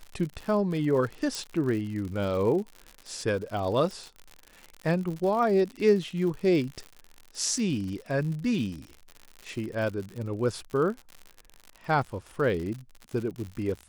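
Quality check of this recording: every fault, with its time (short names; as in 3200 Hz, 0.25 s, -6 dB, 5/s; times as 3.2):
crackle 93/s -34 dBFS
1.35 pop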